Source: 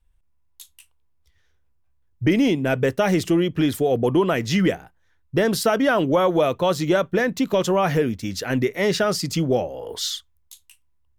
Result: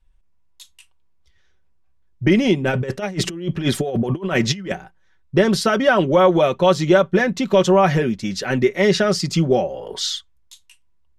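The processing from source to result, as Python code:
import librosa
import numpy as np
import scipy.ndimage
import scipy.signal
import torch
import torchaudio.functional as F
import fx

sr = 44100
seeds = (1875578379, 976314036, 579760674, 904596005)

y = scipy.signal.sosfilt(scipy.signal.butter(2, 7300.0, 'lowpass', fs=sr, output='sos'), x)
y = y + 0.54 * np.pad(y, (int(5.3 * sr / 1000.0), 0))[:len(y)]
y = fx.over_compress(y, sr, threshold_db=-23.0, ratio=-0.5, at=(2.66, 4.72))
y = y * librosa.db_to_amplitude(2.5)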